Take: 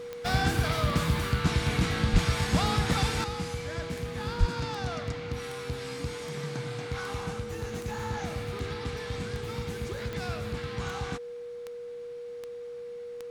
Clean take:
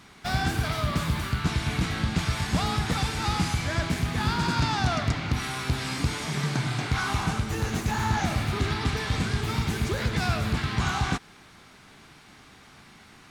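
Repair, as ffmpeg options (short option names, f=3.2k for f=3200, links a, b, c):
-filter_complex "[0:a]adeclick=t=4,bandreject=f=480:w=30,asplit=3[a][b][c];[a]afade=t=out:st=2.12:d=0.02[d];[b]highpass=f=140:w=0.5412,highpass=f=140:w=1.3066,afade=t=in:st=2.12:d=0.02,afade=t=out:st=2.24:d=0.02[e];[c]afade=t=in:st=2.24:d=0.02[f];[d][e][f]amix=inputs=3:normalize=0,asplit=3[g][h][i];[g]afade=t=out:st=4.39:d=0.02[j];[h]highpass=f=140:w=0.5412,highpass=f=140:w=1.3066,afade=t=in:st=4.39:d=0.02,afade=t=out:st=4.51:d=0.02[k];[i]afade=t=in:st=4.51:d=0.02[l];[j][k][l]amix=inputs=3:normalize=0,asetnsamples=n=441:p=0,asendcmd='3.24 volume volume 9dB',volume=0dB"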